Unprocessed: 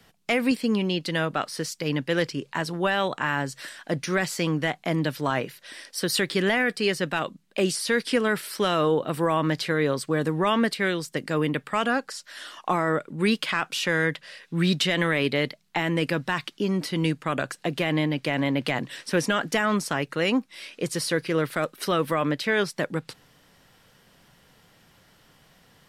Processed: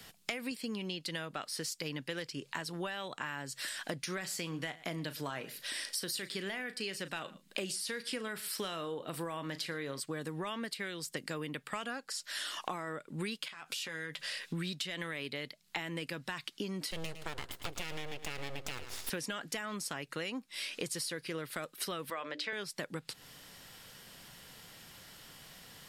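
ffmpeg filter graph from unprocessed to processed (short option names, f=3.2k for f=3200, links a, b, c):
-filter_complex "[0:a]asettb=1/sr,asplit=3[a][b][c];[a]atrim=end=4.134[d];[b]atrim=start=4.13:end=10,asetpts=PTS-STARTPTS,afade=t=in:d=0.004:c=qsin,afade=t=out:st=5.866:d=0.004:c=qsin,asplit=2[e][f];[f]adelay=36,volume=-13dB[g];[e][g]amix=inputs=2:normalize=0,atrim=end_sample=258867,aecho=1:1:112:0.0708,atrim=end_sample=258867[h];[c]atrim=start=9.996[i];[d][h]acrossfade=d=0.004:c1=hsin:c2=qsin[j];[j][i]acrossfade=d=0.004:c1=qsin:c2=hsin,asettb=1/sr,asplit=3[k][l][m];[k]atrim=end=13.484[n];[l]atrim=start=13.48:end=14.33,asetpts=PTS-STARTPTS,afade=t=in:d=0.004:c=qsin,afade=t=out:st=0.846:d=0.004:c=qsin,bass=f=250:g=-3,treble=f=4k:g=1,acompressor=threshold=-38dB:ratio=8:attack=3.2:release=140:knee=1:detection=peak,asplit=2[o][p];[p]adelay=13,volume=-8dB[q];[o][q]amix=inputs=2:normalize=0,atrim=end_sample=37485[r];[m]atrim=start=14.326[s];[n][r]acrossfade=d=0.004:c1=hsin:c2=qsin[t];[t][s]acrossfade=d=0.004:c1=qsin:c2=hsin,asettb=1/sr,asplit=3[u][v][w];[u]atrim=end=16.914[x];[v]atrim=start=16.91:end=19.1,asetpts=PTS-STARTPTS,afade=t=in:d=0.004:c=qsin,afade=t=out:st=2.186:d=0.004:c=qsin,aeval=exprs='abs(val(0))':c=same,aecho=1:1:109|218|327:0.224|0.0627|0.0176,atrim=end_sample=96579[y];[w]atrim=start=19.096[z];[x][y]acrossfade=d=0.004:c1=hsin:c2=qsin[aa];[aa][z]acrossfade=d=0.004:c1=qsin:c2=hsin,asettb=1/sr,asplit=3[ab][ac][ad];[ab]atrim=end=22.104[ae];[ac]atrim=start=22.1:end=22.53,asetpts=PTS-STARTPTS,afade=t=in:d=0.004:c=qsin,afade=t=out:st=0.426:d=0.004:c=qsin,highpass=400,lowpass=5.3k,bandreject=f=60:t=h:w=6,bandreject=f=120:t=h:w=6,bandreject=f=180:t=h:w=6,bandreject=f=240:t=h:w=6,bandreject=f=300:t=h:w=6,bandreject=f=360:t=h:w=6,bandreject=f=420:t=h:w=6,bandreject=f=480:t=h:w=6,bandreject=f=540:t=h:w=6,bandreject=f=600:t=h:w=6[af];[ad]atrim=start=22.526[ag];[ae][af]acrossfade=d=0.004:c1=hsin:c2=qsin[ah];[ah][ag]acrossfade=d=0.004:c1=qsin:c2=hsin,highshelf=f=2.4k:g=10,bandreject=f=5.9k:w=24,acompressor=threshold=-35dB:ratio=16"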